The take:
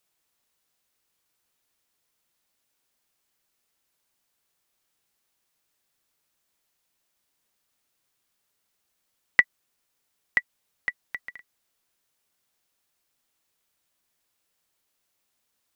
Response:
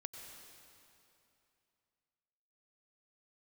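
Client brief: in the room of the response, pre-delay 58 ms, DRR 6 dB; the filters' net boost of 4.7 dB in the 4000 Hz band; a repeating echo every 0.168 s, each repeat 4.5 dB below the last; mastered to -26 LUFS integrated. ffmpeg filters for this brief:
-filter_complex "[0:a]equalizer=f=4k:t=o:g=6.5,aecho=1:1:168|336|504|672|840|1008|1176|1344|1512:0.596|0.357|0.214|0.129|0.0772|0.0463|0.0278|0.0167|0.01,asplit=2[a][b];[1:a]atrim=start_sample=2205,adelay=58[c];[b][c]afir=irnorm=-1:irlink=0,volume=-2.5dB[d];[a][d]amix=inputs=2:normalize=0"

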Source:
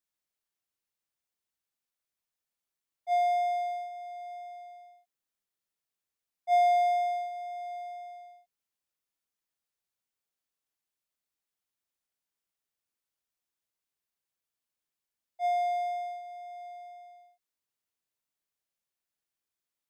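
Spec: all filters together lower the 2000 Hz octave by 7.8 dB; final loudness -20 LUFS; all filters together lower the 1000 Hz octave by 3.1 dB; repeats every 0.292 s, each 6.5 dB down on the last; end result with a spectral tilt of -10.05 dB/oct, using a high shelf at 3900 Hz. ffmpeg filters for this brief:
-af "equalizer=f=1k:t=o:g=-5,equalizer=f=2k:t=o:g=-8,highshelf=f=3.9k:g=3.5,aecho=1:1:292|584|876|1168|1460|1752:0.473|0.222|0.105|0.0491|0.0231|0.0109,volume=15.5dB"

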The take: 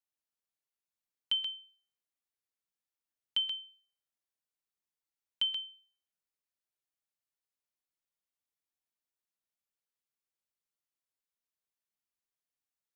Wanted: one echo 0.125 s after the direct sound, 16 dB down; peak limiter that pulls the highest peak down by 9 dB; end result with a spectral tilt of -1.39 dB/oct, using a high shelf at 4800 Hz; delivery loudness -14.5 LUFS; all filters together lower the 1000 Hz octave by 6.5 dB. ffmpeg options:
-af "equalizer=f=1k:t=o:g=-8.5,highshelf=f=4.8k:g=-4.5,alimiter=level_in=8.5dB:limit=-24dB:level=0:latency=1,volume=-8.5dB,aecho=1:1:125:0.158,volume=25.5dB"

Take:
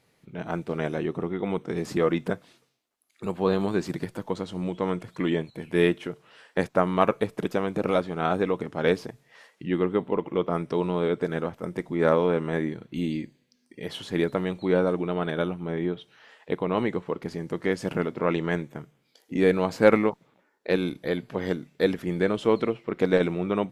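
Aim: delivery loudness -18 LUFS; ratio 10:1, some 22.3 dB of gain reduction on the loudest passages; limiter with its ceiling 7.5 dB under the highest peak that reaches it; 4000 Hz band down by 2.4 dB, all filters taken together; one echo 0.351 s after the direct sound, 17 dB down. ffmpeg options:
-af "equalizer=f=4k:t=o:g=-3,acompressor=threshold=-35dB:ratio=10,alimiter=level_in=5.5dB:limit=-24dB:level=0:latency=1,volume=-5.5dB,aecho=1:1:351:0.141,volume=24.5dB"

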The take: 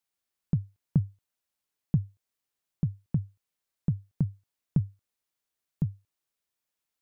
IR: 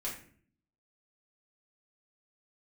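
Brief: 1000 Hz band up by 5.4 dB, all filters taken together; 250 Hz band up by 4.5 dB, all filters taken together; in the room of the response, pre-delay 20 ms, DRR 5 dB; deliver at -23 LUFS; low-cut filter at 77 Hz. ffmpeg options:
-filter_complex "[0:a]highpass=77,equalizer=f=250:t=o:g=8.5,equalizer=f=1k:t=o:g=6.5,asplit=2[a][b];[1:a]atrim=start_sample=2205,adelay=20[c];[b][c]afir=irnorm=-1:irlink=0,volume=-6.5dB[d];[a][d]amix=inputs=2:normalize=0,volume=6.5dB"

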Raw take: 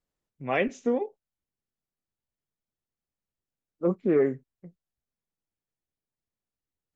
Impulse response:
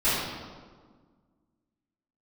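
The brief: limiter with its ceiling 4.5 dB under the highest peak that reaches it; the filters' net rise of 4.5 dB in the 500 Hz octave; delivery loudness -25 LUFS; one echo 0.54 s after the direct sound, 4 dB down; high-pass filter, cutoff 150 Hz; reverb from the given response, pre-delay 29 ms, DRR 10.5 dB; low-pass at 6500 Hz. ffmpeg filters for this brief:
-filter_complex "[0:a]highpass=150,lowpass=6.5k,equalizer=f=500:t=o:g=5.5,alimiter=limit=-14.5dB:level=0:latency=1,aecho=1:1:540:0.631,asplit=2[a][b];[1:a]atrim=start_sample=2205,adelay=29[c];[b][c]afir=irnorm=-1:irlink=0,volume=-25.5dB[d];[a][d]amix=inputs=2:normalize=0,volume=1.5dB"

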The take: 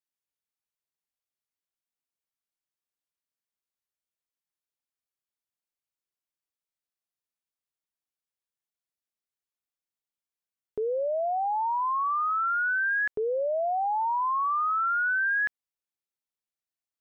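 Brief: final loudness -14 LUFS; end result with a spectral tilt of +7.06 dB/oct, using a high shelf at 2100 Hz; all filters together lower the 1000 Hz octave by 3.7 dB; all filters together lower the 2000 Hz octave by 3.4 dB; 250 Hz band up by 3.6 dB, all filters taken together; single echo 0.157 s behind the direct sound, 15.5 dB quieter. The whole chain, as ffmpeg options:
-af "equalizer=f=250:t=o:g=6,equalizer=f=1k:t=o:g=-5,equalizer=f=2k:t=o:g=-6.5,highshelf=f=2.1k:g=7.5,aecho=1:1:157:0.168,volume=15.5dB"

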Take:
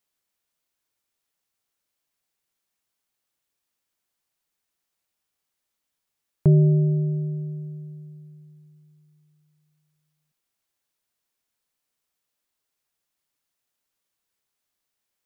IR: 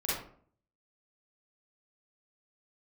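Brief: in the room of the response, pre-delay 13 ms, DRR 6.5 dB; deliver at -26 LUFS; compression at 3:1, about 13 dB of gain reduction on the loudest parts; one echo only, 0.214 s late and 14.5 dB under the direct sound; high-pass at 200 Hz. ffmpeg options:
-filter_complex "[0:a]highpass=200,acompressor=threshold=-35dB:ratio=3,aecho=1:1:214:0.188,asplit=2[a][b];[1:a]atrim=start_sample=2205,adelay=13[c];[b][c]afir=irnorm=-1:irlink=0,volume=-13dB[d];[a][d]amix=inputs=2:normalize=0,volume=11dB"

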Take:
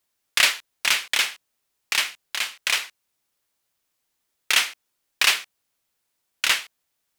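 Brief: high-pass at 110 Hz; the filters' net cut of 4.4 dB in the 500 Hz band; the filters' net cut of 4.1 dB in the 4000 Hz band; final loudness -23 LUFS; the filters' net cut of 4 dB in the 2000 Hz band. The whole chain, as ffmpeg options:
-af "highpass=110,equalizer=f=500:t=o:g=-5.5,equalizer=f=2k:t=o:g=-3.5,equalizer=f=4k:t=o:g=-4,volume=2.5dB"

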